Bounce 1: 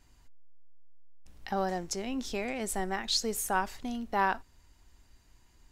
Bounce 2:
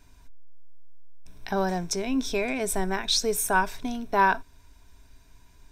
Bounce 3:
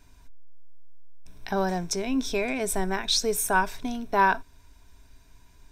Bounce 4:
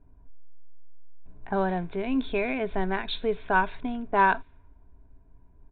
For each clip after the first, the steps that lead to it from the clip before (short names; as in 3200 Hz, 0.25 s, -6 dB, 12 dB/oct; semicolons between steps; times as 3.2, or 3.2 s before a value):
ripple EQ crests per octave 1.6, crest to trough 9 dB; gain +5 dB
nothing audible
low-pass opened by the level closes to 610 Hz, open at -19 dBFS; downsampling 8000 Hz